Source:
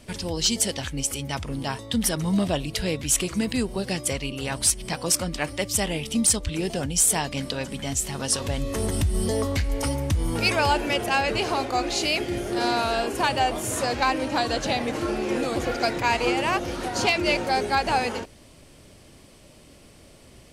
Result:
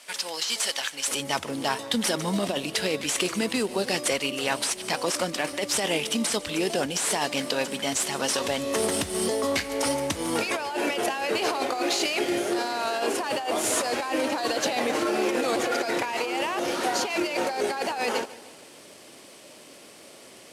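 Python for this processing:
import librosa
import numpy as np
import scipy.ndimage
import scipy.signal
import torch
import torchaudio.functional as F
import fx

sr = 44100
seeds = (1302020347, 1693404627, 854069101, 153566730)

y = fx.cvsd(x, sr, bps=64000)
y = fx.highpass(y, sr, hz=fx.steps((0.0, 930.0), (1.08, 330.0)), slope=12)
y = fx.over_compress(y, sr, threshold_db=-29.0, ratio=-1.0)
y = fx.echo_feedback(y, sr, ms=150, feedback_pct=54, wet_db=-19.0)
y = y * 10.0 ** (3.0 / 20.0)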